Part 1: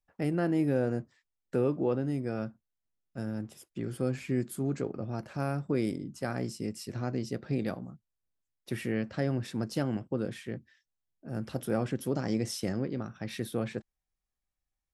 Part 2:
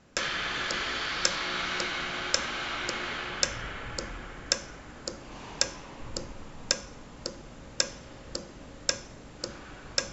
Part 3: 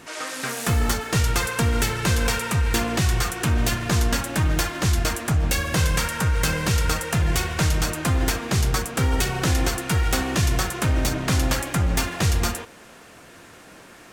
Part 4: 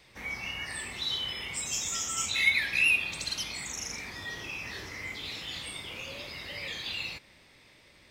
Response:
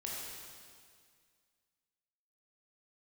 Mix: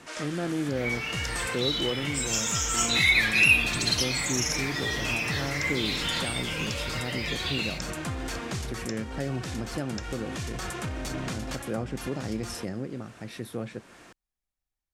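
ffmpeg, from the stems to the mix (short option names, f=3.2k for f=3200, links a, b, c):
-filter_complex "[0:a]volume=-2dB,asplit=2[a][b];[1:a]volume=-13.5dB[c];[2:a]lowpass=10k,alimiter=limit=-18.5dB:level=0:latency=1:release=24,acrossover=split=150|3000[d][e][f];[d]acompressor=threshold=-30dB:ratio=6[g];[g][e][f]amix=inputs=3:normalize=0,volume=-4.5dB[h];[3:a]aecho=1:1:6.7:0.88,dynaudnorm=f=560:g=13:m=12dB,adelay=600,volume=0dB[i];[b]apad=whole_len=622959[j];[h][j]sidechaincompress=threshold=-34dB:ratio=8:attack=11:release=369[k];[a][c][k][i]amix=inputs=4:normalize=0"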